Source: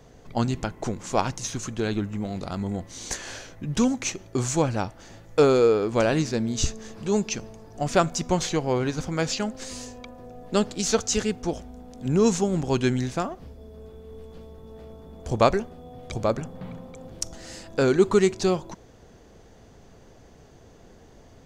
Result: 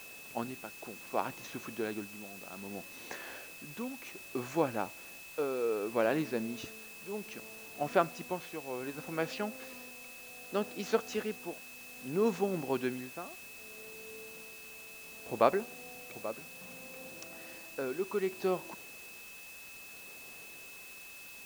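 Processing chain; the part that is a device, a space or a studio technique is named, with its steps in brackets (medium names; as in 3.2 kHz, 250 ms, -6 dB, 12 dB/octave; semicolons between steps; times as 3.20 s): shortwave radio (band-pass 260–2600 Hz; tremolo 0.64 Hz, depth 69%; whistle 2.6 kHz -44 dBFS; white noise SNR 15 dB); trim -5.5 dB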